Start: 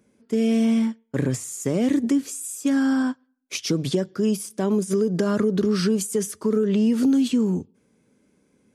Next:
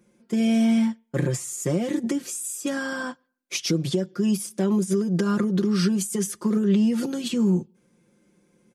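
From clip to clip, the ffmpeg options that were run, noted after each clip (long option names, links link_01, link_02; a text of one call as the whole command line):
ffmpeg -i in.wav -af "aecho=1:1:5.7:0.82,alimiter=limit=-12dB:level=0:latency=1:release=494,volume=-1dB" out.wav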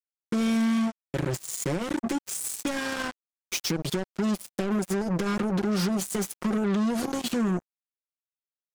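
ffmpeg -i in.wav -af "acompressor=threshold=-31dB:ratio=2.5,acrusher=bits=4:mix=0:aa=0.5,volume=2.5dB" out.wav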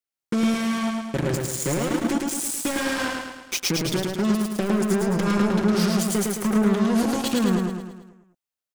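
ffmpeg -i in.wav -af "aecho=1:1:108|216|324|432|540|648|756:0.708|0.368|0.191|0.0995|0.0518|0.0269|0.014,volume=3dB" out.wav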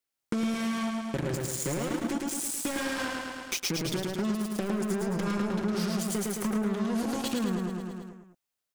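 ffmpeg -i in.wav -af "acompressor=threshold=-37dB:ratio=2.5,volume=4dB" out.wav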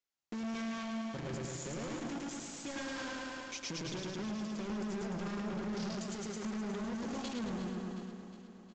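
ffmpeg -i in.wav -af "asoftclip=type=hard:threshold=-31.5dB,aecho=1:1:361|722|1083|1444|1805|2166:0.282|0.161|0.0916|0.0522|0.0298|0.017,aresample=16000,aresample=44100,volume=-5dB" out.wav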